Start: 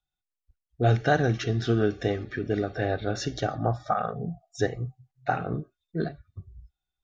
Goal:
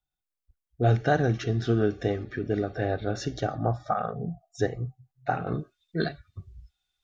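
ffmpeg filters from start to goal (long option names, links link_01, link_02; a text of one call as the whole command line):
ffmpeg -i in.wav -af "asetnsamples=nb_out_samples=441:pad=0,asendcmd='5.47 equalizer g 12',equalizer=frequency=3800:width=0.37:gain=-4" out.wav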